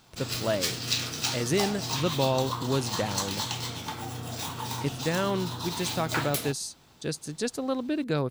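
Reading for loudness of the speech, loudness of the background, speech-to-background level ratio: -31.0 LUFS, -31.5 LUFS, 0.5 dB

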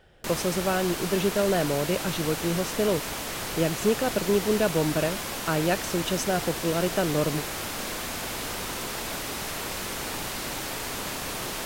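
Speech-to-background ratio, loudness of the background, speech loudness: 4.5 dB, -31.5 LUFS, -27.0 LUFS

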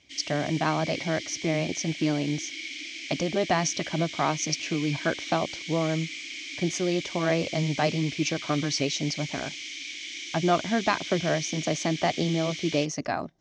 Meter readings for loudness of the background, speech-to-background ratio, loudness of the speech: -35.5 LUFS, 7.5 dB, -28.0 LUFS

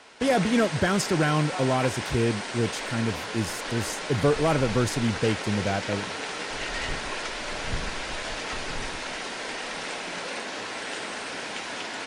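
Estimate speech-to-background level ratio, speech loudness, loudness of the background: 5.5 dB, -26.5 LUFS, -32.0 LUFS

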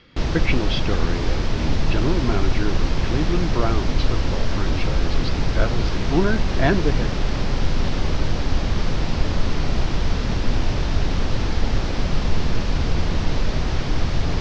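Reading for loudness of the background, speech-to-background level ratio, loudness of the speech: -24.5 LUFS, -2.5 dB, -27.0 LUFS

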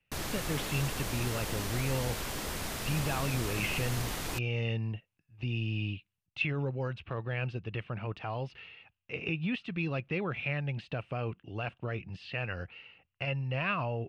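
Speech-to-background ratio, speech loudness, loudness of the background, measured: 0.5 dB, -35.5 LUFS, -36.0 LUFS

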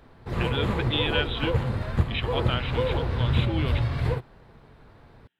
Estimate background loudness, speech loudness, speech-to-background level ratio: -27.5 LUFS, -31.5 LUFS, -4.0 dB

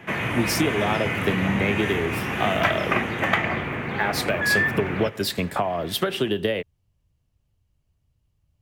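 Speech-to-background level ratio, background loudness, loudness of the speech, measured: -1.0 dB, -25.0 LUFS, -26.0 LUFS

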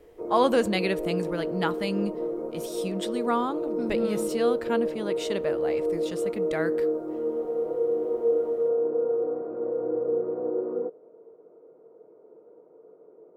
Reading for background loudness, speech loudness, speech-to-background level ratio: -29.0 LUFS, -30.0 LUFS, -1.0 dB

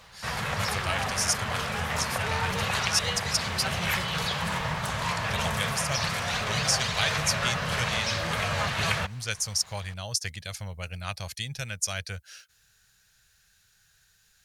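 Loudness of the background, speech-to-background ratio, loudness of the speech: -28.5 LUFS, -3.0 dB, -31.5 LUFS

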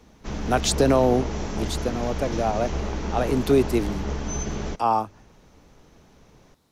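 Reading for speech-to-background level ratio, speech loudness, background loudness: 6.0 dB, -24.5 LUFS, -30.5 LUFS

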